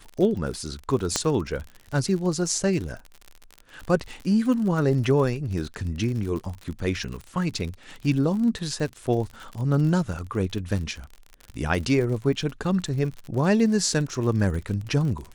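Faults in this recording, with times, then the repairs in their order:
crackle 50 per s -31 dBFS
1.16 s: pop -8 dBFS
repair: de-click

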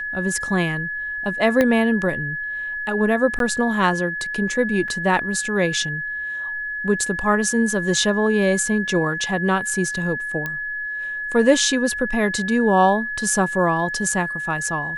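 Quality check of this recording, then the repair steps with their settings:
whine 1.7 kHz -25 dBFS
1.61 s: pop -6 dBFS
3.39–3.40 s: dropout 12 ms
4.88 s: dropout 4.2 ms
10.46 s: pop -13 dBFS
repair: de-click; band-stop 1.7 kHz, Q 30; interpolate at 3.39 s, 12 ms; interpolate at 4.88 s, 4.2 ms

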